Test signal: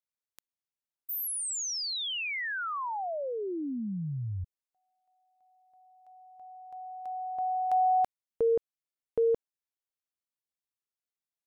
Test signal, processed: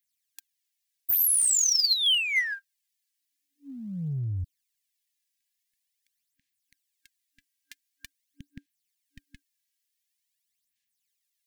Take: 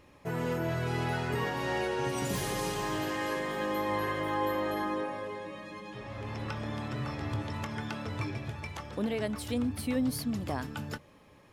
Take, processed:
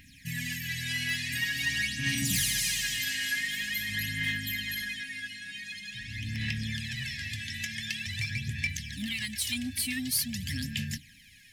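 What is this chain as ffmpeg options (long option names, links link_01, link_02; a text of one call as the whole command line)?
ffmpeg -i in.wav -filter_complex "[0:a]afftfilt=real='re*(1-between(b*sr/4096,290,1600))':imag='im*(1-between(b*sr/4096,290,1600))':win_size=4096:overlap=0.75,aphaser=in_gain=1:out_gain=1:delay=3.1:decay=0.62:speed=0.46:type=sinusoidal,tiltshelf=frequency=1200:gain=-7.5,asplit=2[link_01][link_02];[link_02]asoftclip=type=tanh:threshold=-33.5dB,volume=-3.5dB[link_03];[link_01][link_03]amix=inputs=2:normalize=0" out.wav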